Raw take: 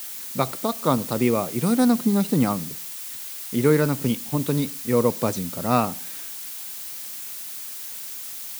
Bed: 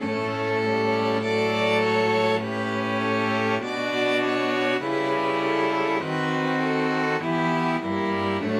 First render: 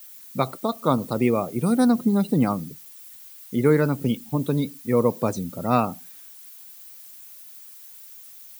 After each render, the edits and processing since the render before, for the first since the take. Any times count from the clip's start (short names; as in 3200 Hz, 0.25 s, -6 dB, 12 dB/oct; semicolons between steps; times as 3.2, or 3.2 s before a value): denoiser 14 dB, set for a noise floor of -35 dBFS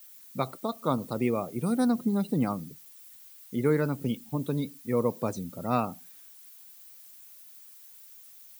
gain -6.5 dB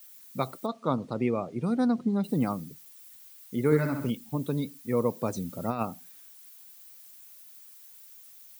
0.66–2.24 air absorption 110 m; 3.65–4.1 flutter echo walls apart 11.3 m, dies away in 0.69 s; 5.33–5.83 negative-ratio compressor -28 dBFS, ratio -0.5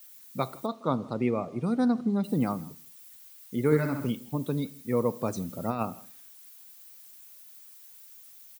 echo 0.162 s -23.5 dB; Schroeder reverb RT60 0.58 s, combs from 25 ms, DRR 18.5 dB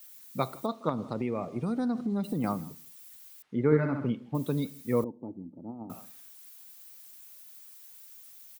0.89–2.44 compressor, threshold -26 dBFS; 3.42–4.35 LPF 2100 Hz; 5.04–5.9 vocal tract filter u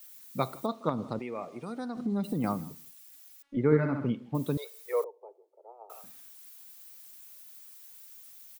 1.19–1.97 HPF 610 Hz 6 dB/oct; 2.91–3.57 robotiser 281 Hz; 4.57–6.04 steep high-pass 400 Hz 96 dB/oct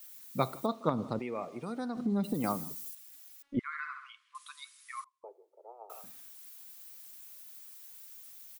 2.34–2.95 tone controls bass -6 dB, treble +8 dB; 3.59–5.24 brick-wall FIR band-pass 990–11000 Hz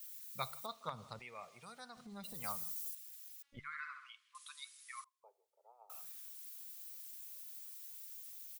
passive tone stack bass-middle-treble 10-0-10; de-hum 146.3 Hz, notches 2